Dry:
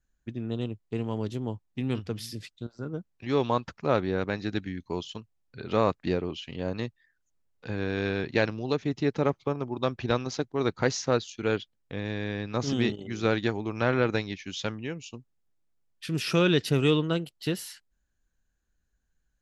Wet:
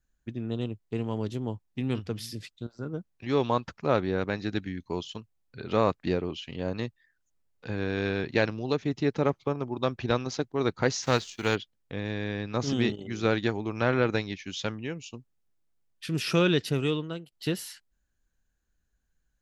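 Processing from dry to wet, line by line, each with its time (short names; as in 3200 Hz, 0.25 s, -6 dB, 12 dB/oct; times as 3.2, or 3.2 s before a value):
11.02–11.54 spectral whitening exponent 0.6
16.38–17.32 fade out, to -13.5 dB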